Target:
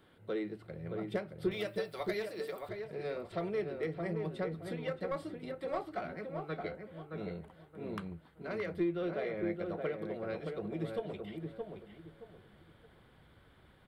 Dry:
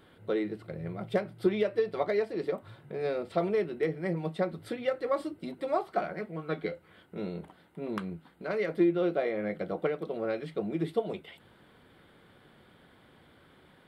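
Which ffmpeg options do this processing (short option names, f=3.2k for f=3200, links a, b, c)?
-filter_complex "[0:a]asettb=1/sr,asplit=3[a][b][c];[a]atrim=end=1.514[d];[b]atrim=start=1.51:end=2.69,asetpts=PTS-STARTPTS,afade=t=in:d=0.004:c=qsin,afade=t=out:st=1.176:d=0.004:c=qsin,aemphasis=mode=production:type=riaa[e];[c]atrim=start=2.686[f];[d][e]acrossfade=d=0.004:c1=hsin:c2=qsin[g];[g][f]acrossfade=d=0.004:c1=qsin:c2=hsin,acrossover=split=480|1000[h][i][j];[i]asoftclip=type=tanh:threshold=-33dB[k];[h][k][j]amix=inputs=3:normalize=0,asubboost=boost=3.5:cutoff=110,asplit=2[l][m];[m]adelay=621,lowpass=f=1.5k:p=1,volume=-4dB,asplit=2[n][o];[o]adelay=621,lowpass=f=1.5k:p=1,volume=0.29,asplit=2[p][q];[q]adelay=621,lowpass=f=1.5k:p=1,volume=0.29,asplit=2[r][s];[s]adelay=621,lowpass=f=1.5k:p=1,volume=0.29[t];[l][n][p][r][t]amix=inputs=5:normalize=0,volume=-5.5dB"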